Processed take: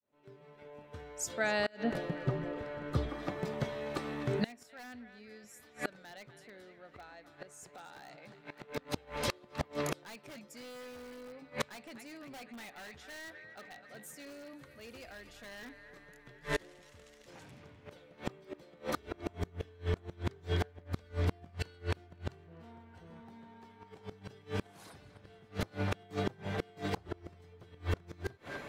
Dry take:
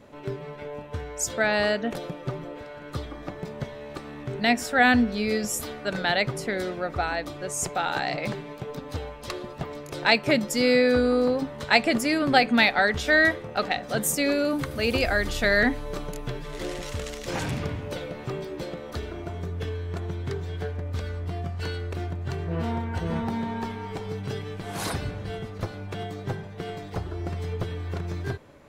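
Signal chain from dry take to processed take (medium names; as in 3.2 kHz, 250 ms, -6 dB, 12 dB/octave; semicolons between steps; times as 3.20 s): fade-in on the opening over 7.82 s; on a send: band-passed feedback delay 252 ms, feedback 72%, band-pass 2 kHz, level -11 dB; on the sum: saturation -19 dBFS, distortion -11 dB; bass shelf 69 Hz -11 dB; in parallel at -5 dB: integer overflow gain 20 dB; on the sum: inverted gate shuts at -23 dBFS, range -29 dB; 1.84–3.09 s: tilt EQ -2 dB/octave; trim +2.5 dB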